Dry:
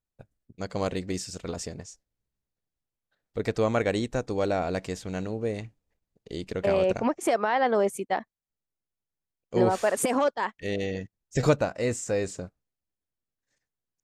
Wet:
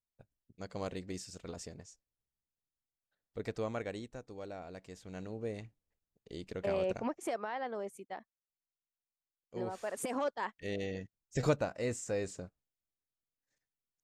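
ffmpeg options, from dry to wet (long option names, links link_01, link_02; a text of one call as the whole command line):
ffmpeg -i in.wav -af "volume=7dB,afade=type=out:start_time=3.41:duration=0.79:silence=0.398107,afade=type=in:start_time=4.84:duration=0.58:silence=0.354813,afade=type=out:start_time=6.92:duration=0.83:silence=0.446684,afade=type=in:start_time=9.75:duration=0.74:silence=0.375837" out.wav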